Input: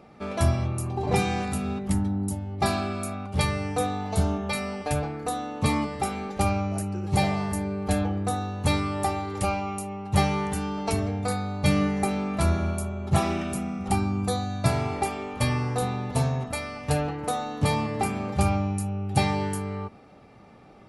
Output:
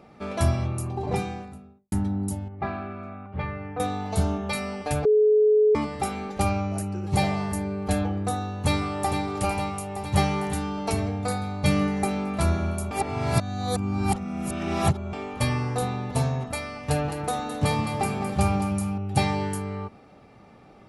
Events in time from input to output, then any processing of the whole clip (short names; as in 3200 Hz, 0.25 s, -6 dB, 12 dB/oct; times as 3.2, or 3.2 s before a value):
0.71–1.92 studio fade out
2.48–3.8 ladder low-pass 2500 Hz, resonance 25%
5.05–5.75 bleep 426 Hz -15 dBFS
8.35–9.24 echo throw 0.46 s, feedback 70%, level -7.5 dB
12.91–15.13 reverse
16.77–18.98 split-band echo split 350 Hz, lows 0.156 s, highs 0.212 s, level -9 dB